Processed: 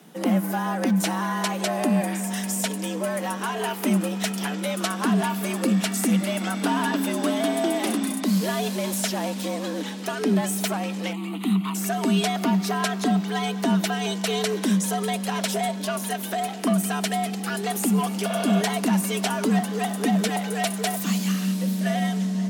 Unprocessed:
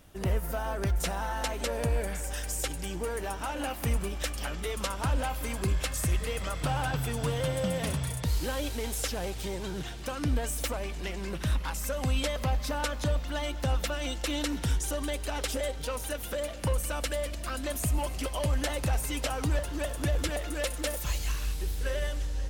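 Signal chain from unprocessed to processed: 11.13–11.75 s: static phaser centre 1.5 kHz, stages 6; 18.32–18.59 s: spectral replace 310–3900 Hz before; frequency shift +140 Hz; trim +6 dB

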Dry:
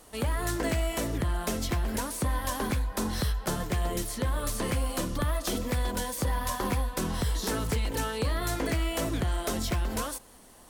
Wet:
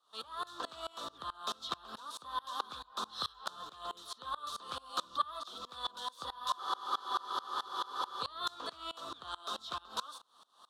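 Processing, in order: two resonant band-passes 2.1 kHz, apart 1.6 oct; spectral freeze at 6.60 s, 1.61 s; sawtooth tremolo in dB swelling 4.6 Hz, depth 25 dB; trim +12 dB

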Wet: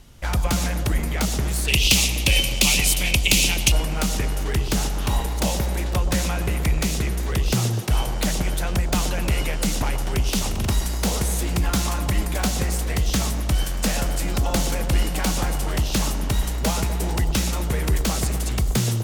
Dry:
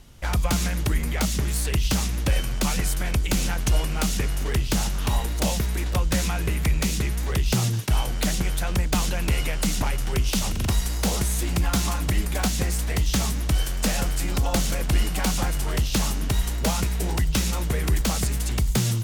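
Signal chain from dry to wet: 1.68–3.72 s: resonant high shelf 2 kHz +8.5 dB, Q 3; feedback echo behind a band-pass 124 ms, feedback 73%, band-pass 540 Hz, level -7 dB; trim +1 dB

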